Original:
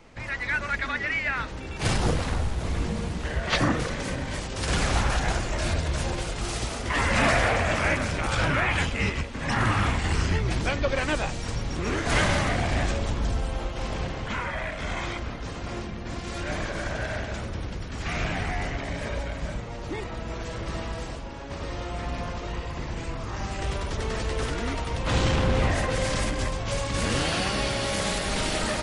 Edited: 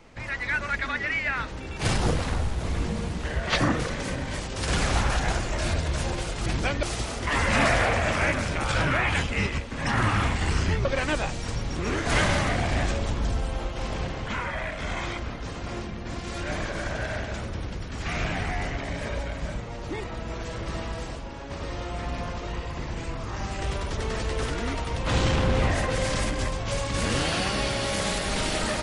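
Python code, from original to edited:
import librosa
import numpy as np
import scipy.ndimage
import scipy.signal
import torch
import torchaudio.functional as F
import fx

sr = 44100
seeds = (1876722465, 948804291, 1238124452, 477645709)

y = fx.edit(x, sr, fx.move(start_s=10.48, length_s=0.37, to_s=6.46), tone=tone)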